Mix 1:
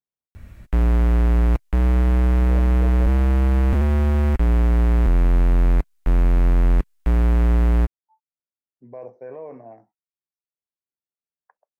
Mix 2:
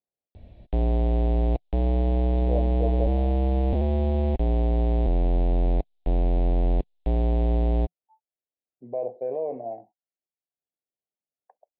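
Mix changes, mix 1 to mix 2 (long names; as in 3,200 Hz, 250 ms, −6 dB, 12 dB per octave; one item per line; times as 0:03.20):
background −6.0 dB
master: add drawn EQ curve 170 Hz 0 dB, 730 Hz +10 dB, 1,300 Hz −18 dB, 3,700 Hz +5 dB, 6,700 Hz −26 dB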